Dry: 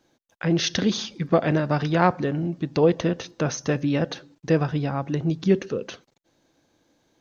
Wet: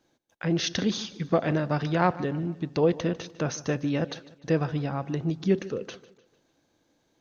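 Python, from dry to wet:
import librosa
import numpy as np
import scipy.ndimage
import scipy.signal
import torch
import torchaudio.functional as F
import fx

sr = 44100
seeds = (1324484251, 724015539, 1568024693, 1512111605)

y = fx.echo_feedback(x, sr, ms=150, feedback_pct=46, wet_db=-19)
y = F.gain(torch.from_numpy(y), -4.0).numpy()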